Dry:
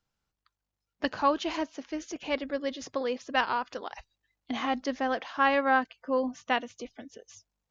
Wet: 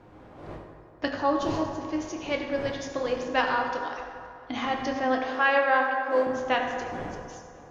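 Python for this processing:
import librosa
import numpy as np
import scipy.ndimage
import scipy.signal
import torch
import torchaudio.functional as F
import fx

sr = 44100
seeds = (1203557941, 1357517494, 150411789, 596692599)

y = fx.dmg_wind(x, sr, seeds[0], corner_hz=620.0, level_db=-45.0)
y = fx.peak_eq(y, sr, hz=2100.0, db=-13.5, octaves=1.1, at=(1.15, 1.8))
y = fx.highpass(y, sr, hz=310.0, slope=24, at=(5.26, 6.27))
y = fx.echo_feedback(y, sr, ms=260, feedback_pct=56, wet_db=-23.5)
y = fx.rev_fdn(y, sr, rt60_s=2.4, lf_ratio=0.8, hf_ratio=0.5, size_ms=57.0, drr_db=0.5)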